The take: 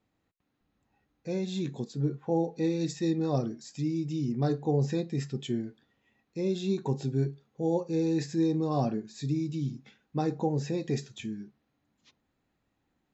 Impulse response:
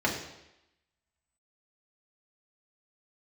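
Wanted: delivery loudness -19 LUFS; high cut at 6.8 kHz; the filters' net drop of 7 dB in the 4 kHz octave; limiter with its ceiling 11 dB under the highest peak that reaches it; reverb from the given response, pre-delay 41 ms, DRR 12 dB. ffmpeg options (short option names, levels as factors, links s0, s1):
-filter_complex "[0:a]lowpass=6800,equalizer=f=4000:t=o:g=-8,alimiter=level_in=1.41:limit=0.0631:level=0:latency=1,volume=0.708,asplit=2[s0][s1];[1:a]atrim=start_sample=2205,adelay=41[s2];[s1][s2]afir=irnorm=-1:irlink=0,volume=0.0668[s3];[s0][s3]amix=inputs=2:normalize=0,volume=7.08"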